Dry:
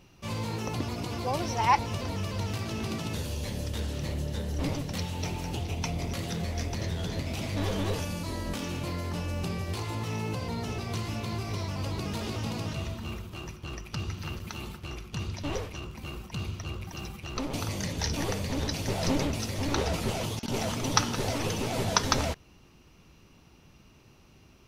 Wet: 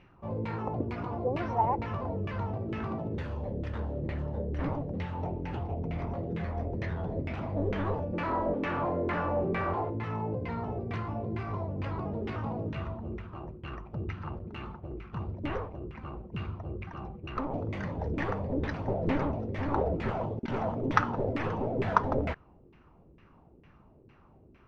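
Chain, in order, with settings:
0:08.13–0:09.90: mid-hump overdrive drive 31 dB, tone 1,400 Hz, clips at −22 dBFS
auto-filter low-pass saw down 2.2 Hz 350–2,200 Hz
level −2 dB

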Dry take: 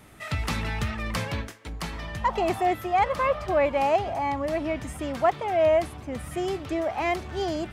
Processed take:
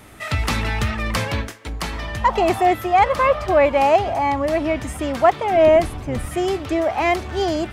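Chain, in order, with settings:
0:05.50–0:06.26: sub-octave generator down 1 octave, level 0 dB
parametric band 160 Hz −6 dB 0.43 octaves
level +7.5 dB

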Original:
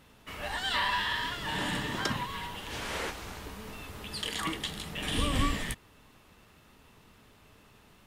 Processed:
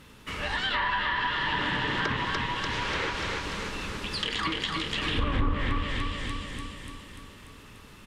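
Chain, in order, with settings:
parametric band 700 Hz −10 dB 0.42 octaves
repeating echo 293 ms, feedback 57%, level −4 dB
dynamic equaliser 200 Hz, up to −6 dB, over −47 dBFS, Q 1.4
in parallel at +2.5 dB: downward compressor 6 to 1, threshold −34 dBFS, peak gain reduction 11 dB
on the sum: treble cut that deepens with the level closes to 730 Hz, closed at −18 dBFS
highs frequency-modulated by the lows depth 0.41 ms

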